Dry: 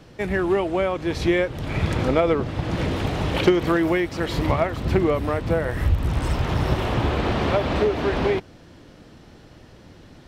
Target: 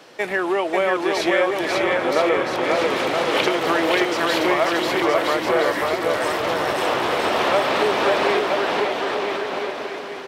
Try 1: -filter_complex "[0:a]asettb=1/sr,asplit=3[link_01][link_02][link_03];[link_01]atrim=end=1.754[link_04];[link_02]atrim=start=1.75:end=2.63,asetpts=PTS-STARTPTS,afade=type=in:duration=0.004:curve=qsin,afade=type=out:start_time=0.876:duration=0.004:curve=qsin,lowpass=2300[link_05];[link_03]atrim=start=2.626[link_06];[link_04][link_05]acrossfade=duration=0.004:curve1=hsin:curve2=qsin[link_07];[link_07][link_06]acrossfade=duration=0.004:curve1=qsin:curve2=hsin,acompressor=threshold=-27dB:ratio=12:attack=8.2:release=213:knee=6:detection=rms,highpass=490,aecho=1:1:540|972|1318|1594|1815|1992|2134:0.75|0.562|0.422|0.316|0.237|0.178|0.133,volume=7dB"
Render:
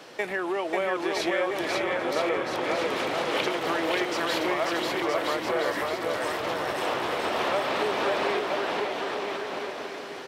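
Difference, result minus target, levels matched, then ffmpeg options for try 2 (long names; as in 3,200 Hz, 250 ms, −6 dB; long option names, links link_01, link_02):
downward compressor: peak gain reduction +8.5 dB
-filter_complex "[0:a]asettb=1/sr,asplit=3[link_01][link_02][link_03];[link_01]atrim=end=1.754[link_04];[link_02]atrim=start=1.75:end=2.63,asetpts=PTS-STARTPTS,afade=type=in:duration=0.004:curve=qsin,afade=type=out:start_time=0.876:duration=0.004:curve=qsin,lowpass=2300[link_05];[link_03]atrim=start=2.626[link_06];[link_04][link_05]acrossfade=duration=0.004:curve1=hsin:curve2=qsin[link_07];[link_07][link_06]acrossfade=duration=0.004:curve1=qsin:curve2=hsin,acompressor=threshold=-17.5dB:ratio=12:attack=8.2:release=213:knee=6:detection=rms,highpass=490,aecho=1:1:540|972|1318|1594|1815|1992|2134:0.75|0.562|0.422|0.316|0.237|0.178|0.133,volume=7dB"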